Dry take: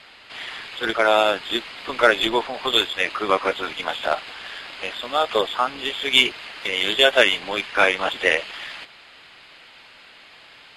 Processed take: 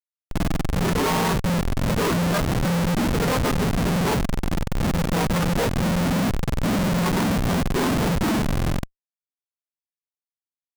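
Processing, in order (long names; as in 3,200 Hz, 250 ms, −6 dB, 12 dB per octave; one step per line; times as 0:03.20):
frequency axis turned over on the octave scale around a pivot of 770 Hz
comparator with hysteresis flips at −27 dBFS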